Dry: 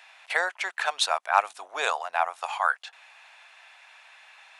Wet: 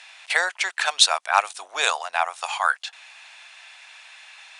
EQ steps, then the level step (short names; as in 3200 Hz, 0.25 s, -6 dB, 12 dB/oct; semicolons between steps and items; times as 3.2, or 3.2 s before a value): elliptic low-pass 9700 Hz, stop band 50 dB; high shelf 2400 Hz +12 dB; +1.0 dB